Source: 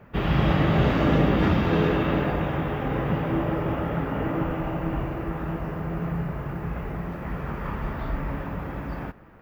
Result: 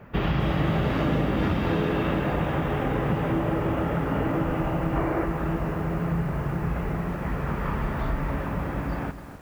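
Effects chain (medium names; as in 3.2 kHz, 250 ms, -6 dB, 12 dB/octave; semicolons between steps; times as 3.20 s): time-frequency box 4.96–5.25 s, 270–2400 Hz +7 dB; compression, threshold -24 dBFS, peak gain reduction 8.5 dB; bit-crushed delay 260 ms, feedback 35%, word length 8-bit, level -12 dB; trim +3 dB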